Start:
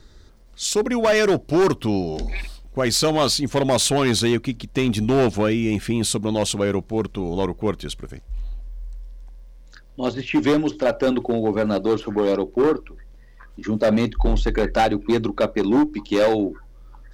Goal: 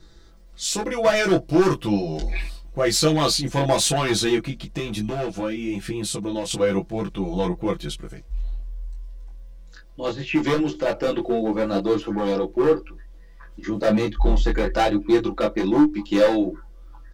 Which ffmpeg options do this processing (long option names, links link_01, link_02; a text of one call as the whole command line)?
ffmpeg -i in.wav -filter_complex "[0:a]aecho=1:1:6:0.84,asettb=1/sr,asplit=3[link_01][link_02][link_03];[link_01]atrim=end=4.434[link_04];[link_02]atrim=start=4.43:end=6.51,asetpts=PTS-STARTPTS,afade=type=in:duration=0.004:curve=qsin,afade=type=out:start_time=2.076:duration=0.004:curve=qsin,acompressor=threshold=-21dB:ratio=6[link_05];[link_03]atrim=start=6.506[link_06];[link_04][link_05]acrossfade=duration=0.004:curve1=hsin:curve2=qsin[link_07];[link_07][link_06]acrossfade=duration=0.004:curve1=qsin:curve2=hsin,flanger=delay=19.5:depth=2.8:speed=1" out.wav